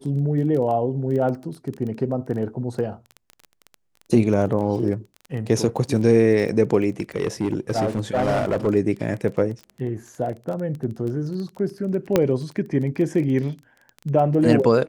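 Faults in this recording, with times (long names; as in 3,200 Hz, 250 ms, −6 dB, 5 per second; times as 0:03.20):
surface crackle 17 per second −29 dBFS
0:07.00–0:08.68: clipping −16.5 dBFS
0:12.16: click −4 dBFS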